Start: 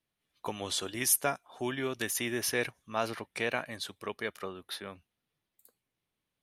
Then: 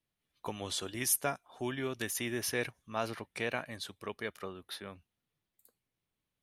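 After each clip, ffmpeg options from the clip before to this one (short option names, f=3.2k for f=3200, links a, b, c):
-af "lowshelf=f=160:g=6,volume=-3.5dB"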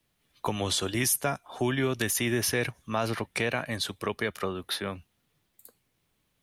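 -filter_complex "[0:a]asplit=2[a][b];[b]alimiter=level_in=2.5dB:limit=-24dB:level=0:latency=1:release=22,volume=-2.5dB,volume=-1dB[c];[a][c]amix=inputs=2:normalize=0,acrossover=split=170[d][e];[e]acompressor=threshold=-36dB:ratio=2[f];[d][f]amix=inputs=2:normalize=0,volume=7.5dB"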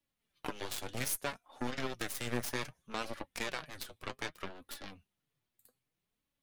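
-af "aeval=exprs='0.224*(cos(1*acos(clip(val(0)/0.224,-1,1)))-cos(1*PI/2))+0.0126*(cos(3*acos(clip(val(0)/0.224,-1,1)))-cos(3*PI/2))+0.0447*(cos(7*acos(clip(val(0)/0.224,-1,1)))-cos(7*PI/2))+0.0112*(cos(8*acos(clip(val(0)/0.224,-1,1)))-cos(8*PI/2))':c=same,flanger=delay=3.5:depth=4.8:regen=44:speed=0.63:shape=sinusoidal,volume=-4dB"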